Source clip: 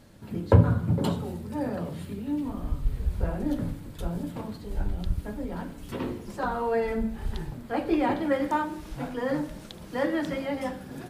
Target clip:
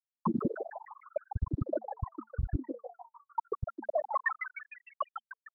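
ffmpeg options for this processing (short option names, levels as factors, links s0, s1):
-filter_complex "[0:a]afftfilt=real='re*gte(hypot(re,im),0.708)':imag='im*gte(hypot(re,im),0.708)':win_size=1024:overlap=0.75,highshelf=f=1600:t=q:w=3:g=6.5,acrossover=split=130[s0][s1];[s0]acompressor=threshold=0.0282:ratio=6[s2];[s2][s1]amix=inputs=2:normalize=0,alimiter=level_in=1.5:limit=0.0631:level=0:latency=1:release=220,volume=0.668,asplit=2[s3][s4];[s4]asplit=6[s5][s6][s7][s8][s9][s10];[s5]adelay=304,afreqshift=110,volume=0.398[s11];[s6]adelay=608,afreqshift=220,volume=0.207[s12];[s7]adelay=912,afreqshift=330,volume=0.107[s13];[s8]adelay=1216,afreqshift=440,volume=0.0562[s14];[s9]adelay=1520,afreqshift=550,volume=0.0292[s15];[s10]adelay=1824,afreqshift=660,volume=0.0151[s16];[s11][s12][s13][s14][s15][s16]amix=inputs=6:normalize=0[s17];[s3][s17]amix=inputs=2:normalize=0,asetrate=88200,aresample=44100,volume=2"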